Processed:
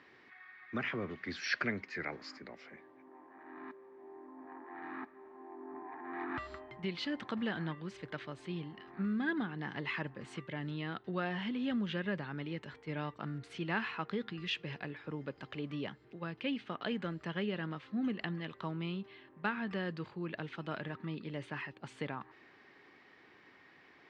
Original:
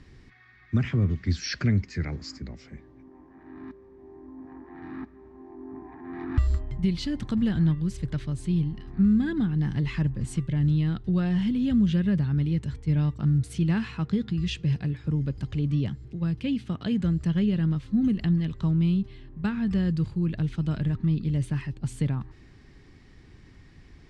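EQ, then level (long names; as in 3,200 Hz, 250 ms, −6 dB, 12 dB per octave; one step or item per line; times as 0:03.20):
band-pass filter 560–2,600 Hz
+3.0 dB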